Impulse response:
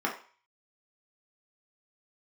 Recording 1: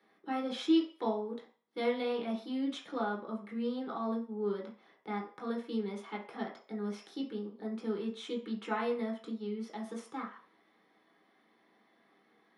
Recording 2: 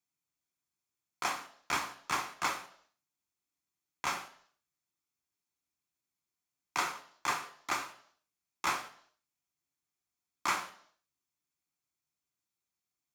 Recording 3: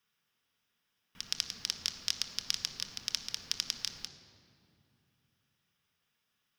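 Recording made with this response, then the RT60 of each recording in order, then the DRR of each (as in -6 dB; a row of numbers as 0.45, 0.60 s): 1; 0.40, 0.65, 2.7 s; -2.5, 7.0, 6.0 dB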